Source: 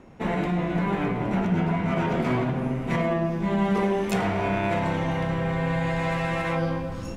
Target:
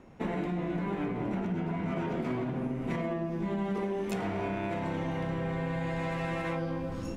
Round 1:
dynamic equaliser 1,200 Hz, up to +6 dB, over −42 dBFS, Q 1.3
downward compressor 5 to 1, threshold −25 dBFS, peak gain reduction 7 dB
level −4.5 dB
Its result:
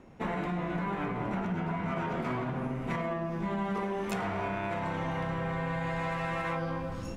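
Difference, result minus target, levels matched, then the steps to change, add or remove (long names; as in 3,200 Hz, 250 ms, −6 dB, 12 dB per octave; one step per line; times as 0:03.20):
1,000 Hz band +4.0 dB
change: dynamic equaliser 310 Hz, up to +6 dB, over −42 dBFS, Q 1.3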